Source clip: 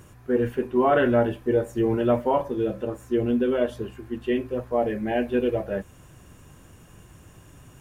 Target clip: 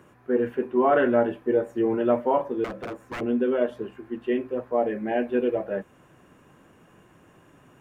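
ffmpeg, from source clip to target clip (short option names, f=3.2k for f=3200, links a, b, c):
-filter_complex "[0:a]acrossover=split=170 2700:gain=0.126 1 0.224[a][b][c];[a][b][c]amix=inputs=3:normalize=0,asettb=1/sr,asplit=3[d][e][f];[d]atrim=end=2.644[g];[e]atrim=start=2.64:end=3.21,asetpts=PTS-STARTPTS,afade=t=in:d=0.004:c=qsin,afade=t=out:st=0.566:d=0.004:c=qsin,aeval=exprs='0.0398*(abs(mod(val(0)/0.0398+3,4)-2)-1)':c=same[h];[f]atrim=start=3.206[i];[g][h]acrossfade=d=0.004:c1=hsin:c2=qsin[j];[j][i]acrossfade=d=0.004:c1=qsin:c2=hsin"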